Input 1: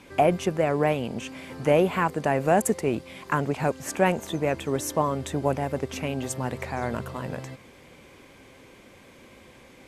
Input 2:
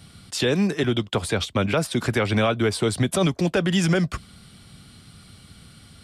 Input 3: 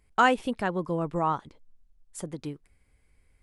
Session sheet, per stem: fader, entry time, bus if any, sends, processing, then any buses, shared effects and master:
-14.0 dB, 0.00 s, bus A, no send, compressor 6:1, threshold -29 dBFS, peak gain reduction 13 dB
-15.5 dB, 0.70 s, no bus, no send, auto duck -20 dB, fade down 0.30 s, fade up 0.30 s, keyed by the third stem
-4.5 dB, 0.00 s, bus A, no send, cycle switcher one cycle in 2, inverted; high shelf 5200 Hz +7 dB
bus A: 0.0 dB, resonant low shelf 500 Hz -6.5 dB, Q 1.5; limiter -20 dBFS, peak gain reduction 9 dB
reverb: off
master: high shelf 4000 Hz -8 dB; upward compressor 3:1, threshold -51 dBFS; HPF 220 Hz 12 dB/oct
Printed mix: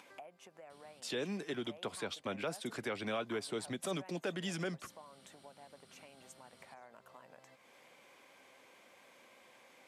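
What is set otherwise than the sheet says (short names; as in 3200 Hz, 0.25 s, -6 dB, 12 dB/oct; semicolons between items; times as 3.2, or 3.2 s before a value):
stem 1 -14.0 dB -> -21.0 dB; stem 3: muted; master: missing high shelf 4000 Hz -8 dB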